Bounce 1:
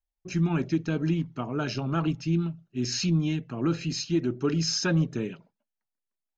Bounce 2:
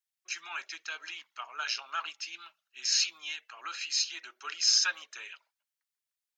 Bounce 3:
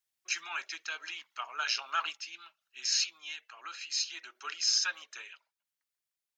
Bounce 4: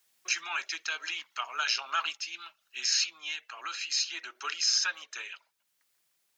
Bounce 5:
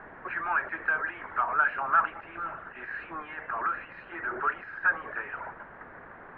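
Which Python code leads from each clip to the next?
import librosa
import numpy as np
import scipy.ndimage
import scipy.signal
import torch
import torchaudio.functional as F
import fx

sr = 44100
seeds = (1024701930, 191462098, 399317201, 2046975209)

y1 = scipy.signal.sosfilt(scipy.signal.bessel(4, 1700.0, 'highpass', norm='mag', fs=sr, output='sos'), x)
y1 = y1 * librosa.db_to_amplitude(5.0)
y2 = fx.rider(y1, sr, range_db=4, speed_s=0.5)
y2 = fx.tremolo_random(y2, sr, seeds[0], hz=2.3, depth_pct=55)
y3 = fx.band_squash(y2, sr, depth_pct=40)
y3 = y3 * librosa.db_to_amplitude(3.5)
y4 = y3 + 0.5 * 10.0 ** (-36.0 / 20.0) * np.sign(y3)
y4 = scipy.signal.sosfilt(scipy.signal.ellip(4, 1.0, 70, 1700.0, 'lowpass', fs=sr, output='sos'), y4)
y4 = y4 * librosa.db_to_amplitude(7.5)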